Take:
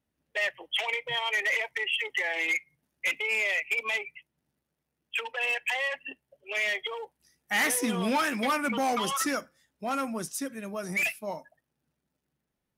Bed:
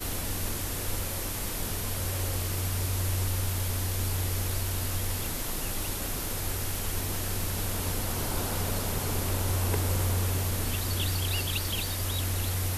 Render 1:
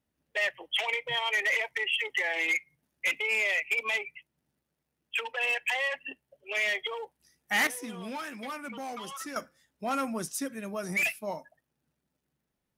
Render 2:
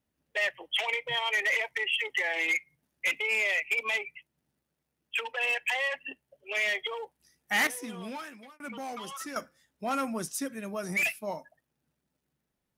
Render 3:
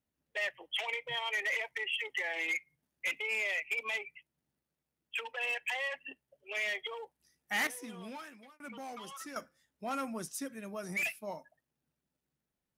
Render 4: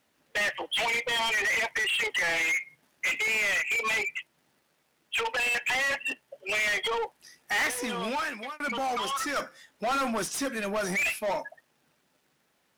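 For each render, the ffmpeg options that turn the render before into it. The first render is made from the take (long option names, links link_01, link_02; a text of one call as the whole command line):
ffmpeg -i in.wav -filter_complex "[0:a]asplit=3[link_01][link_02][link_03];[link_01]atrim=end=7.672[link_04];[link_02]atrim=start=7.668:end=9.362,asetpts=PTS-STARTPTS,volume=-11dB[link_05];[link_03]atrim=start=9.358[link_06];[link_04][link_05]acrossfade=duration=0.004:curve1=hsin:curve2=hsin[link_07];[link_07][link_06]acrossfade=duration=0.004:curve1=hsin:curve2=hsin" out.wav
ffmpeg -i in.wav -filter_complex "[0:a]asplit=2[link_01][link_02];[link_01]atrim=end=8.6,asetpts=PTS-STARTPTS,afade=type=out:start_time=8.05:duration=0.55[link_03];[link_02]atrim=start=8.6,asetpts=PTS-STARTPTS,afade=type=in:duration=0.004:curve=hsin[link_04];[link_03][link_04]concat=n=2:v=0:a=1" out.wav
ffmpeg -i in.wav -af "volume=-6dB" out.wav
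ffmpeg -i in.wav -filter_complex "[0:a]asplit=2[link_01][link_02];[link_02]highpass=frequency=720:poles=1,volume=26dB,asoftclip=type=tanh:threshold=-21.5dB[link_03];[link_01][link_03]amix=inputs=2:normalize=0,lowpass=frequency=4000:poles=1,volume=-6dB,asplit=2[link_04][link_05];[link_05]asoftclip=type=hard:threshold=-36dB,volume=-7.5dB[link_06];[link_04][link_06]amix=inputs=2:normalize=0" out.wav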